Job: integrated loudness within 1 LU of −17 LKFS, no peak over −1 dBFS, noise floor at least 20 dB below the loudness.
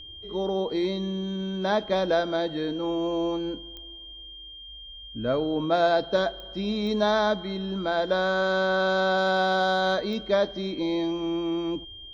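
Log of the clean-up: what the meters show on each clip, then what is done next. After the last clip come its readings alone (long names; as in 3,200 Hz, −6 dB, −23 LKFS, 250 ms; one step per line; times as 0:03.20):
number of clicks 4; interfering tone 3,200 Hz; level of the tone −41 dBFS; integrated loudness −26.0 LKFS; sample peak −11.5 dBFS; target loudness −17.0 LKFS
→ click removal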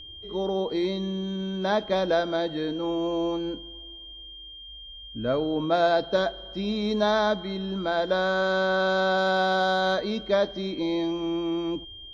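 number of clicks 0; interfering tone 3,200 Hz; level of the tone −41 dBFS
→ notch filter 3,200 Hz, Q 30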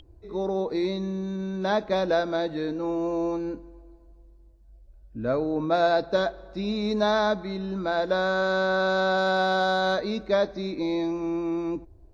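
interfering tone none found; integrated loudness −26.5 LKFS; sample peak −11.5 dBFS; target loudness −17.0 LKFS
→ level +9.5 dB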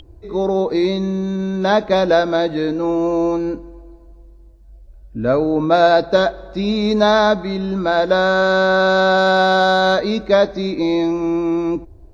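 integrated loudness −17.0 LKFS; sample peak −2.0 dBFS; background noise floor −43 dBFS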